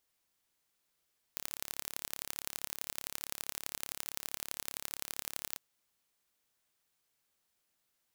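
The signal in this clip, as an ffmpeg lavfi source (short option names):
-f lavfi -i "aevalsrc='0.376*eq(mod(n,1249),0)*(0.5+0.5*eq(mod(n,3747),0))':d=4.2:s=44100"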